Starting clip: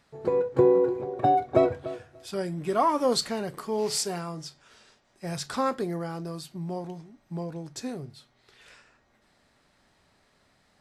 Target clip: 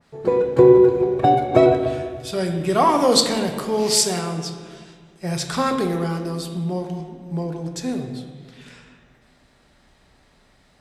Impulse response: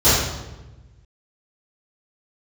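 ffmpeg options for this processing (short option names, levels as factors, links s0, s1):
-filter_complex "[0:a]asplit=2[s0][s1];[1:a]atrim=start_sample=2205,asetrate=23814,aresample=44100[s2];[s1][s2]afir=irnorm=-1:irlink=0,volume=0.0237[s3];[s0][s3]amix=inputs=2:normalize=0,adynamicequalizer=threshold=0.0126:dfrequency=1700:dqfactor=0.7:tfrequency=1700:tqfactor=0.7:attack=5:release=100:ratio=0.375:range=2.5:mode=boostabove:tftype=highshelf,volume=1.88"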